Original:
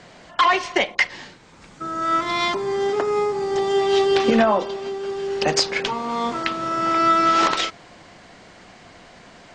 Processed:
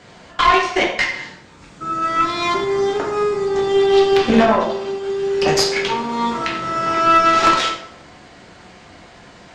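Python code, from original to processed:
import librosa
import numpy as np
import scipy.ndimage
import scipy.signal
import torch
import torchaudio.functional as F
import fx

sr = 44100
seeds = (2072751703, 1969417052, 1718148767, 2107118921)

y = fx.high_shelf(x, sr, hz=5200.0, db=-4.5, at=(3.45, 4.33))
y = fx.rev_plate(y, sr, seeds[0], rt60_s=0.66, hf_ratio=0.75, predelay_ms=0, drr_db=-2.5)
y = fx.cheby_harmonics(y, sr, harmonics=(2,), levels_db=(-11,), full_scale_db=-3.0)
y = y * 10.0 ** (-1.5 / 20.0)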